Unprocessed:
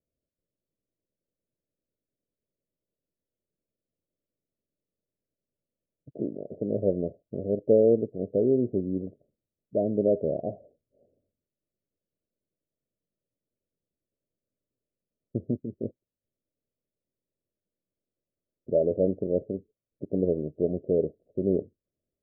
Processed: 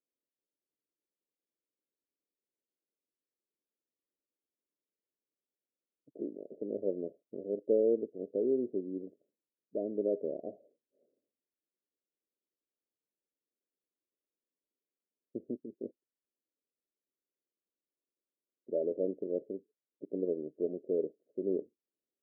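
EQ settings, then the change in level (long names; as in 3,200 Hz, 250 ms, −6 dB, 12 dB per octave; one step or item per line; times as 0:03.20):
four-pole ladder band-pass 390 Hz, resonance 25%
parametric band 420 Hz +3.5 dB 1.4 octaves
0.0 dB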